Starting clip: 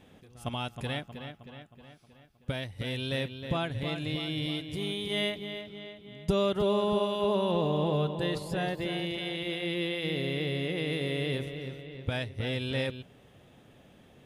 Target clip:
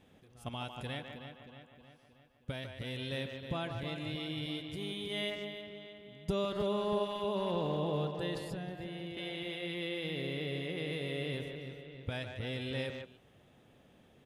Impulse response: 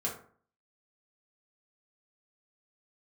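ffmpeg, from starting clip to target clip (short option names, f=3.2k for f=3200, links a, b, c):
-filter_complex "[0:a]asplit=2[a][b];[b]adelay=150,highpass=300,lowpass=3.4k,asoftclip=type=hard:threshold=-24dB,volume=-6dB[c];[a][c]amix=inputs=2:normalize=0,asettb=1/sr,asplit=3[d][e][f];[d]atrim=end=8.514[g];[e]atrim=start=8.51:end=9.17,asetpts=PTS-STARTPTS,afade=t=in:d=0.004:c=qsin,afade=t=out:st=0.656:d=0.004:c=qsin,acrossover=split=290[h][i];[i]acompressor=threshold=-38dB:ratio=6[j];[h][j]amix=inputs=2:normalize=0[k];[f]atrim=start=9.166[l];[g][k]acrossfade=d=0.004:c1=hsin:c2=qsin[m];[m][l]acrossfade=d=0.004:c1=qsin:c2=hsin,volume=-6.5dB"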